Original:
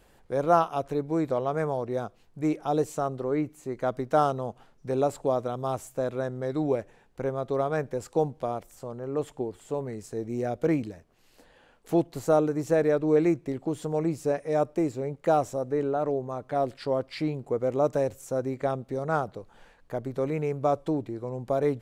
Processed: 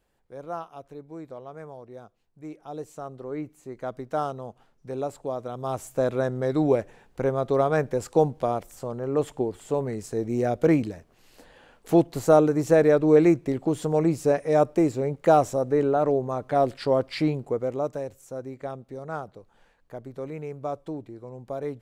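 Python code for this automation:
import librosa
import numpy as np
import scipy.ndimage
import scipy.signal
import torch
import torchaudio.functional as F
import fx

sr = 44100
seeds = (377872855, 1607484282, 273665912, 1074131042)

y = fx.gain(x, sr, db=fx.line((2.49, -13.0), (3.44, -5.0), (5.37, -5.0), (6.01, 5.0), (17.29, 5.0), (18.01, -6.5)))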